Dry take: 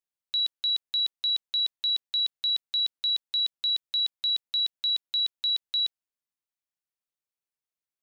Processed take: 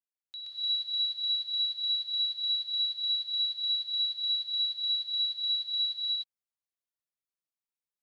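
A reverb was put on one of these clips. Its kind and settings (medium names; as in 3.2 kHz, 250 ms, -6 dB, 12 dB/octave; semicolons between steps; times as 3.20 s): gated-style reverb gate 380 ms rising, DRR -7.5 dB; trim -15 dB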